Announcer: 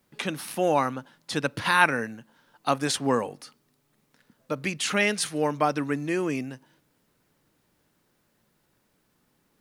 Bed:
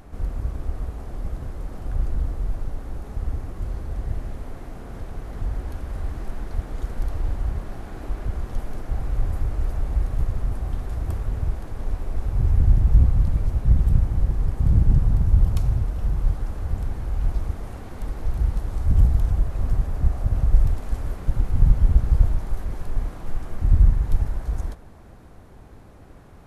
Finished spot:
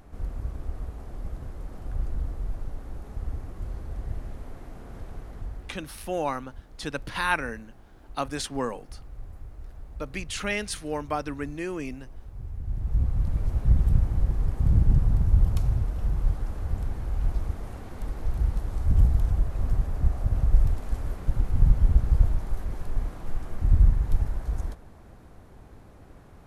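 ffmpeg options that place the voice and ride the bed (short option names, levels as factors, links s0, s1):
-filter_complex "[0:a]adelay=5500,volume=0.531[s0];[1:a]volume=2.82,afade=t=out:st=5.14:d=0.74:silence=0.251189,afade=t=in:st=12.63:d=0.95:silence=0.188365[s1];[s0][s1]amix=inputs=2:normalize=0"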